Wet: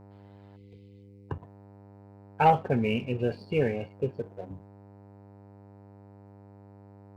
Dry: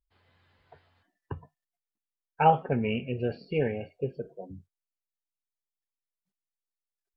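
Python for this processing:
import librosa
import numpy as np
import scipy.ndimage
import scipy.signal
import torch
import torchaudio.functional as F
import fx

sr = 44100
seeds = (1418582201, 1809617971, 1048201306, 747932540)

y = fx.dmg_buzz(x, sr, base_hz=100.0, harmonics=10, level_db=-49.0, tilt_db=-6, odd_only=False)
y = fx.leveller(y, sr, passes=1)
y = fx.spec_box(y, sr, start_s=0.56, length_s=0.73, low_hz=520.0, high_hz=2000.0, gain_db=-24)
y = F.gain(torch.from_numpy(y), -2.0).numpy()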